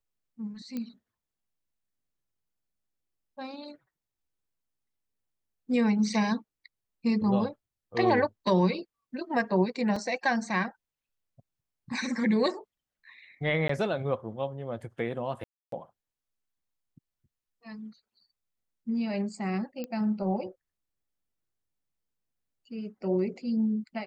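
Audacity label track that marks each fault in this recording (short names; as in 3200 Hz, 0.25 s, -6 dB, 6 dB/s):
0.770000	0.770000	pop -22 dBFS
9.960000	9.960000	gap 3.7 ms
13.680000	13.690000	gap 14 ms
15.440000	15.720000	gap 0.283 s
19.840000	19.840000	pop -23 dBFS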